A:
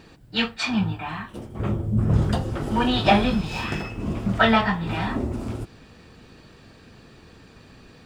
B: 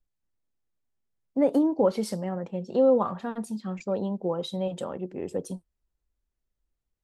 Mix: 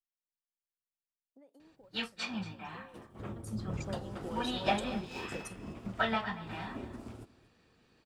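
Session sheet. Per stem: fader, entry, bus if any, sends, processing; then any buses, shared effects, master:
-4.5 dB, 1.60 s, no send, echo send -12 dB, compression 1.5:1, threshold -32 dBFS, peak gain reduction 7.5 dB
3.24 s -14 dB -> 3.57 s -2.5 dB, 0.00 s, no send, no echo send, treble shelf 2.4 kHz +11 dB; compression 6:1, threshold -32 dBFS, peak gain reduction 15.5 dB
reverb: none
echo: delay 234 ms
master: bass shelf 170 Hz -7 dB; upward expansion 1.5:1, over -50 dBFS

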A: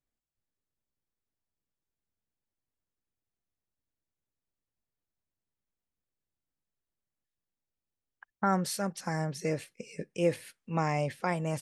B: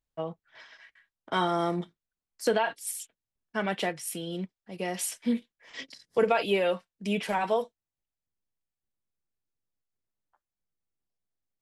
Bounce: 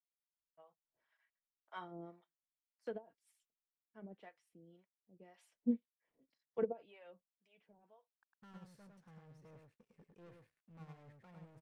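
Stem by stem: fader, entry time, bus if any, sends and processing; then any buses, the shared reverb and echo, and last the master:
-18.0 dB, 0.00 s, no send, echo send -4 dB, FFT filter 120 Hz 0 dB, 760 Hz -6 dB, 1.3 kHz -3 dB, 3.8 kHz -13 dB; waveshaping leveller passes 5
-4.0 dB, 0.40 s, no send, no echo send, low-pass 2.2 kHz 6 dB/octave; harmonic tremolo 1.9 Hz, depth 100%, crossover 600 Hz; auto duck -13 dB, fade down 1.50 s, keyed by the first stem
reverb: none
echo: delay 104 ms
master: treble shelf 3.4 kHz -8 dB; upward expansion 2.5:1, over -40 dBFS

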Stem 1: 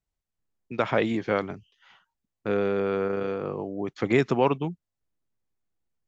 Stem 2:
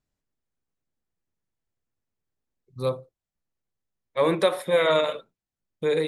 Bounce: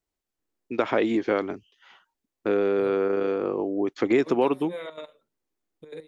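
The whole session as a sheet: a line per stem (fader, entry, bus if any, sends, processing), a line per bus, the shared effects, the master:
+2.5 dB, 0.00 s, no send, resonant low shelf 210 Hz -7.5 dB, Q 1.5
-16.0 dB, 0.00 s, no send, trance gate "xx.x..xxxxxx" 190 bpm -12 dB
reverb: none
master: peaking EQ 330 Hz +4 dB 0.8 oct; compression 2:1, threshold -21 dBFS, peak gain reduction 6 dB

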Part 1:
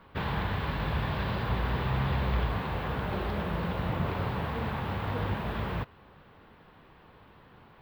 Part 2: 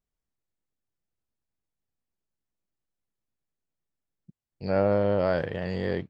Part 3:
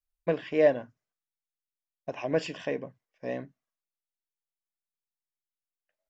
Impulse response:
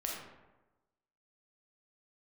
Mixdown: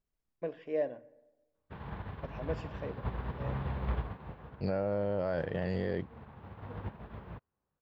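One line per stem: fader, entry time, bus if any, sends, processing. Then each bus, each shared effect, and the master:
-1.5 dB, 1.55 s, no send, treble shelf 2.4 kHz -7.5 dB; upward expansion 2.5:1, over -44 dBFS; auto duck -7 dB, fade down 0.35 s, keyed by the second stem
+1.0 dB, 0.00 s, no send, transient shaper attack +2 dB, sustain -3 dB
-14.0 dB, 0.15 s, send -18 dB, peaking EQ 460 Hz +4.5 dB 1.1 oct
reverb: on, RT60 1.1 s, pre-delay 4 ms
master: treble shelf 3.1 kHz -7.5 dB; peak limiter -22.5 dBFS, peak gain reduction 11.5 dB

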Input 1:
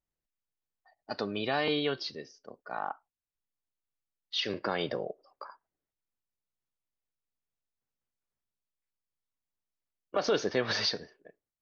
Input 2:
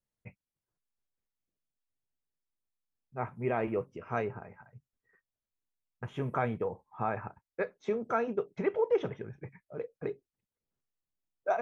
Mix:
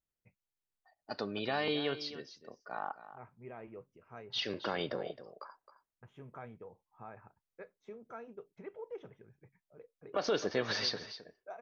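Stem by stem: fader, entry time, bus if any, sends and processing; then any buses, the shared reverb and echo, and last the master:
-4.0 dB, 0.00 s, no send, echo send -13.5 dB, none
-17.0 dB, 0.00 s, no send, no echo send, none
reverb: none
echo: delay 265 ms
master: none

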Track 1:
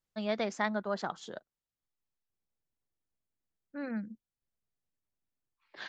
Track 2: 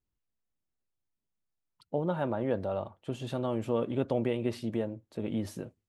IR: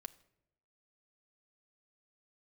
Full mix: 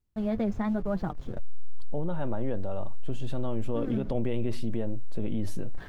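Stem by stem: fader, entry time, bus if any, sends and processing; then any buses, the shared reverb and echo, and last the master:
+1.5 dB, 0.00 s, no send, send-on-delta sampling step -43.5 dBFS; tilt EQ -4 dB/octave; flange 1 Hz, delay 5.7 ms, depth 4.1 ms, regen +36%
+1.5 dB, 0.00 s, no send, none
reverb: none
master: bass shelf 230 Hz +8 dB; peak limiter -20.5 dBFS, peak gain reduction 9.5 dB

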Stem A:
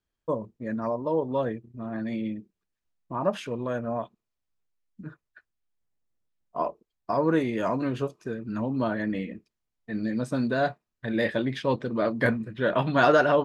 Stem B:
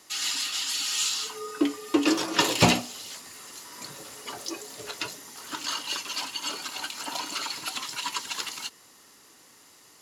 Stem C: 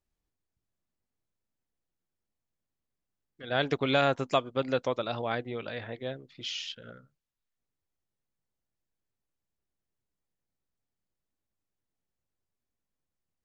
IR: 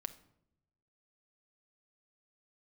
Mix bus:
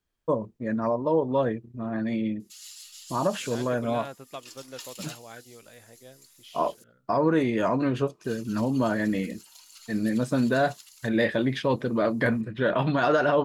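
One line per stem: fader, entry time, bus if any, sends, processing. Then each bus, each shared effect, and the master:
+3.0 dB, 0.00 s, no send, none
-13.0 dB, 2.40 s, muted 6.84–8.24 s, no send, differentiator
-13.5 dB, 0.00 s, no send, none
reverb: none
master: peak limiter -13.5 dBFS, peak gain reduction 9 dB

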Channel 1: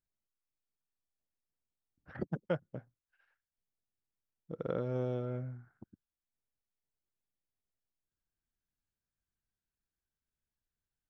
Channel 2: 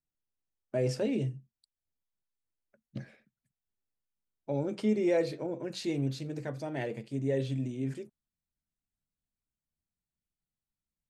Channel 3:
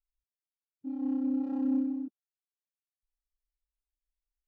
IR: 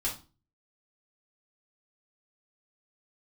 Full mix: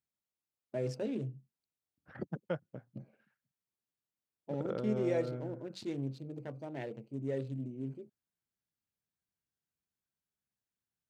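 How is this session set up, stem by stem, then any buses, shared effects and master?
-2.5 dB, 0.00 s, no send, none
-5.5 dB, 0.00 s, no send, local Wiener filter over 25 samples
mute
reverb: none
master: high-pass 95 Hz

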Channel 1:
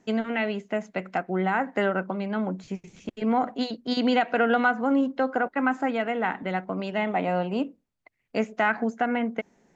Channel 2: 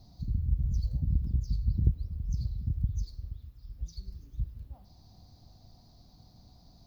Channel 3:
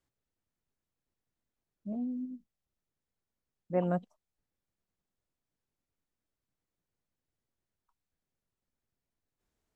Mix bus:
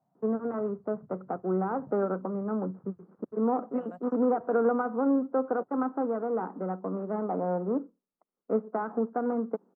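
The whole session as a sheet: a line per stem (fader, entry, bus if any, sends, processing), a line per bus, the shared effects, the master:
-2.0 dB, 0.15 s, no send, dead-time distortion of 0.2 ms; Chebyshev band-pass 180–1300 Hz, order 4; resonant low shelf 550 Hz +6.5 dB, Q 3
-9.5 dB, 0.00 s, no send, elliptic band-pass 150–1600 Hz
-12.5 dB, 0.00 s, no send, none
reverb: none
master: resonant low shelf 520 Hz -7 dB, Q 1.5

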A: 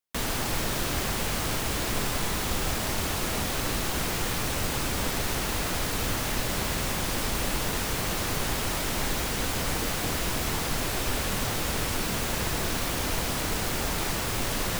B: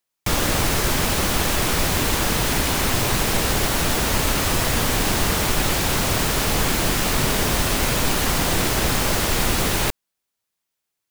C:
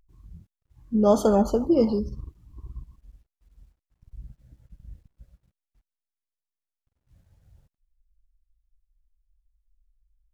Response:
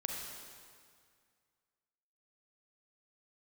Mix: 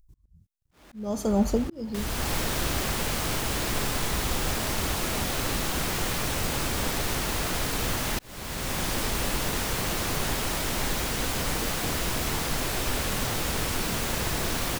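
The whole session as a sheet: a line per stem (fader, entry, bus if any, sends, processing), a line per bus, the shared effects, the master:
+0.5 dB, 1.80 s, no send, de-hum 97.13 Hz, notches 29
-9.0 dB, 0.45 s, no send, high-pass 150 Hz 24 dB/octave; Schmitt trigger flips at -22.5 dBFS; auto duck -12 dB, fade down 1.10 s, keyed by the third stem
-4.0 dB, 0.00 s, no send, tone controls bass +9 dB, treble +11 dB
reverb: none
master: slow attack 615 ms

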